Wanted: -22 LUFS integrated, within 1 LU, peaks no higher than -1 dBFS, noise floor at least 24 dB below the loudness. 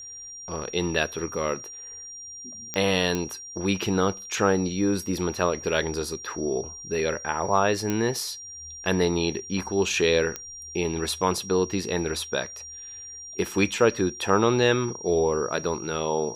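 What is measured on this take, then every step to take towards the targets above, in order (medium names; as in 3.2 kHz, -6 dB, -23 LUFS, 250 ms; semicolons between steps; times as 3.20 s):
clicks found 4; steady tone 5.7 kHz; tone level -38 dBFS; loudness -25.5 LUFS; peak level -6.0 dBFS; loudness target -22.0 LUFS
-> de-click; band-stop 5.7 kHz, Q 30; trim +3.5 dB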